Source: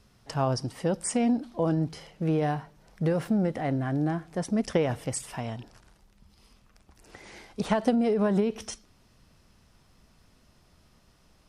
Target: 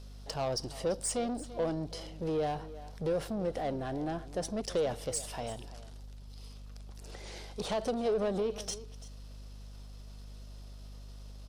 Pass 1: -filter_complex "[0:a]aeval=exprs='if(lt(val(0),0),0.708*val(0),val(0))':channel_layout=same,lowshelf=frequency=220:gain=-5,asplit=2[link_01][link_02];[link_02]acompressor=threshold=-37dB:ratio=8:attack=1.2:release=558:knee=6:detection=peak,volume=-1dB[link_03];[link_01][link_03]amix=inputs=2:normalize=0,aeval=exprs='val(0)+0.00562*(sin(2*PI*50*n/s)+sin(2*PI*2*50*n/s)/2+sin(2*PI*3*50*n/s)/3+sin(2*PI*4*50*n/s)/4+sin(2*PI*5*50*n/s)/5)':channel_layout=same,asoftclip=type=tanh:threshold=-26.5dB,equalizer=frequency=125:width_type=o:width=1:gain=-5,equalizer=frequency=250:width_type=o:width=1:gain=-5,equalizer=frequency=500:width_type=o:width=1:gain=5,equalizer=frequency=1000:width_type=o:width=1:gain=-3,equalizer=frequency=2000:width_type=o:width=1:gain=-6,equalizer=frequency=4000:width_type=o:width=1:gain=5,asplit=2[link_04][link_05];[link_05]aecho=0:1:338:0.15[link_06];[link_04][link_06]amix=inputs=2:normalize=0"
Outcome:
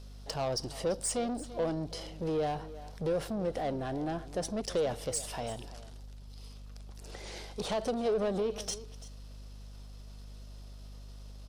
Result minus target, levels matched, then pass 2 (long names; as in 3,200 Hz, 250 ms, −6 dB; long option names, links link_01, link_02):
downward compressor: peak gain reduction −10 dB
-filter_complex "[0:a]aeval=exprs='if(lt(val(0),0),0.708*val(0),val(0))':channel_layout=same,lowshelf=frequency=220:gain=-5,asplit=2[link_01][link_02];[link_02]acompressor=threshold=-48.5dB:ratio=8:attack=1.2:release=558:knee=6:detection=peak,volume=-1dB[link_03];[link_01][link_03]amix=inputs=2:normalize=0,aeval=exprs='val(0)+0.00562*(sin(2*PI*50*n/s)+sin(2*PI*2*50*n/s)/2+sin(2*PI*3*50*n/s)/3+sin(2*PI*4*50*n/s)/4+sin(2*PI*5*50*n/s)/5)':channel_layout=same,asoftclip=type=tanh:threshold=-26.5dB,equalizer=frequency=125:width_type=o:width=1:gain=-5,equalizer=frequency=250:width_type=o:width=1:gain=-5,equalizer=frequency=500:width_type=o:width=1:gain=5,equalizer=frequency=1000:width_type=o:width=1:gain=-3,equalizer=frequency=2000:width_type=o:width=1:gain=-6,equalizer=frequency=4000:width_type=o:width=1:gain=5,asplit=2[link_04][link_05];[link_05]aecho=0:1:338:0.15[link_06];[link_04][link_06]amix=inputs=2:normalize=0"